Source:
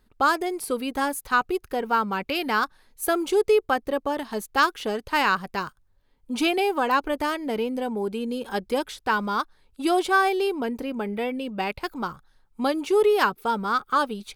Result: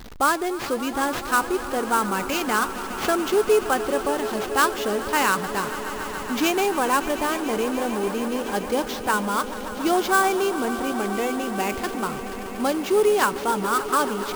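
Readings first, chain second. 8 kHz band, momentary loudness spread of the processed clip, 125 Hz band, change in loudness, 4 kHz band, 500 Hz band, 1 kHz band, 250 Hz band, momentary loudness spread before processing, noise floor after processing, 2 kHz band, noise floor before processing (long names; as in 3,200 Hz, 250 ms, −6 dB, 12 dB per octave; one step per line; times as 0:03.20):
+9.0 dB, 7 LU, +3.5 dB, +1.5 dB, +1.5 dB, +1.5 dB, +1.5 dB, +2.5 dB, 9 LU, −32 dBFS, +1.0 dB, −63 dBFS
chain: converter with a step at zero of −34.5 dBFS
sample-rate reduction 9,500 Hz, jitter 20%
echo that builds up and dies away 143 ms, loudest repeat 5, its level −16 dB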